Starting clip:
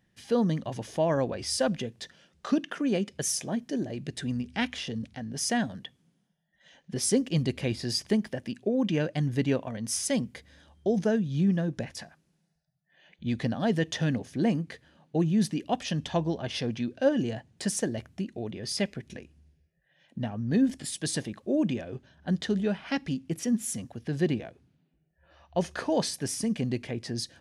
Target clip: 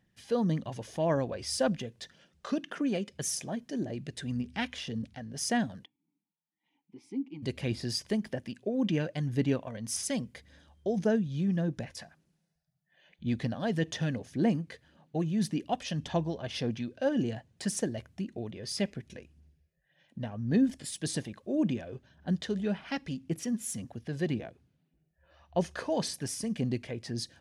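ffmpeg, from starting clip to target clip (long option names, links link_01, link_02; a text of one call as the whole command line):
ffmpeg -i in.wav -filter_complex "[0:a]asplit=3[link_01][link_02][link_03];[link_01]afade=type=out:start_time=5.84:duration=0.02[link_04];[link_02]asplit=3[link_05][link_06][link_07];[link_05]bandpass=frequency=300:width_type=q:width=8,volume=0dB[link_08];[link_06]bandpass=frequency=870:width_type=q:width=8,volume=-6dB[link_09];[link_07]bandpass=frequency=2240:width_type=q:width=8,volume=-9dB[link_10];[link_08][link_09][link_10]amix=inputs=3:normalize=0,afade=type=in:start_time=5.84:duration=0.02,afade=type=out:start_time=7.42:duration=0.02[link_11];[link_03]afade=type=in:start_time=7.42:duration=0.02[link_12];[link_04][link_11][link_12]amix=inputs=3:normalize=0,aphaser=in_gain=1:out_gain=1:delay=2:decay=0.3:speed=1.8:type=sinusoidal,volume=-4dB" out.wav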